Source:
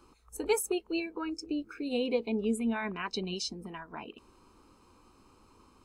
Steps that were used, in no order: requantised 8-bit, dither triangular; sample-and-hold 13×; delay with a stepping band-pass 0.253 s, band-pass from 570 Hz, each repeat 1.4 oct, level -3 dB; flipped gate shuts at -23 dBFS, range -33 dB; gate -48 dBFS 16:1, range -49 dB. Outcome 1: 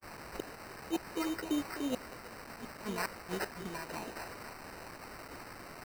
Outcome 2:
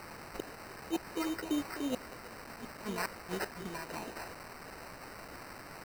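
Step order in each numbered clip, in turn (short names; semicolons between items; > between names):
delay with a stepping band-pass > flipped gate > requantised > sample-and-hold > gate; delay with a stepping band-pass > gate > flipped gate > requantised > sample-and-hold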